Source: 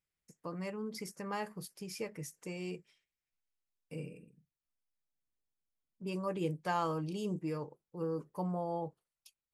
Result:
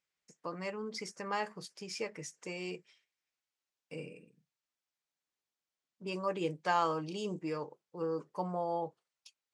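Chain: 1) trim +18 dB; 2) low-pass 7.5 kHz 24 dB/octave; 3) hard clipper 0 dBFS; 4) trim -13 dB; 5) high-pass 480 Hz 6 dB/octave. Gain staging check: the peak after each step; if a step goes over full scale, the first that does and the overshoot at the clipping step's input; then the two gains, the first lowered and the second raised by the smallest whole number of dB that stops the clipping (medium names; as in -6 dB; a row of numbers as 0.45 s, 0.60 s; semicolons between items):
-4.0 dBFS, -4.0 dBFS, -4.0 dBFS, -17.0 dBFS, -16.5 dBFS; nothing clips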